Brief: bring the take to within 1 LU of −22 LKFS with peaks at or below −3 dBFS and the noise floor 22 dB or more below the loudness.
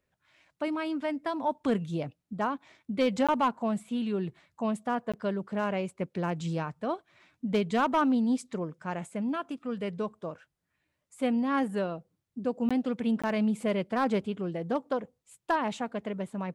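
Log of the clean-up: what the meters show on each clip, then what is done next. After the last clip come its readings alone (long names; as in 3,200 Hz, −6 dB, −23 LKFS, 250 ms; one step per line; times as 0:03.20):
share of clipped samples 0.2%; peaks flattened at −19.0 dBFS; number of dropouts 4; longest dropout 16 ms; integrated loudness −31.0 LKFS; sample peak −19.0 dBFS; target loudness −22.0 LKFS
→ clipped peaks rebuilt −19 dBFS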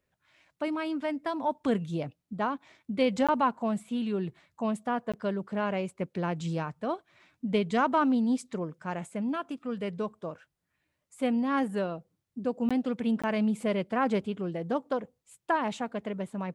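share of clipped samples 0.0%; number of dropouts 4; longest dropout 16 ms
→ repair the gap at 0:03.27/0:05.12/0:12.69/0:13.22, 16 ms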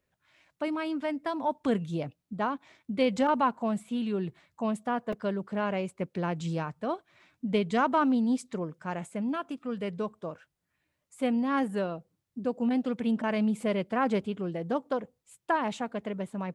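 number of dropouts 0; integrated loudness −31.0 LKFS; sample peak −14.0 dBFS; target loudness −22.0 LKFS
→ level +9 dB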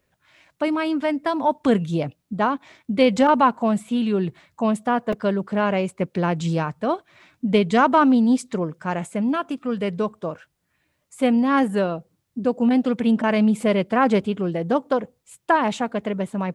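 integrated loudness −22.0 LKFS; sample peak −5.0 dBFS; background noise floor −73 dBFS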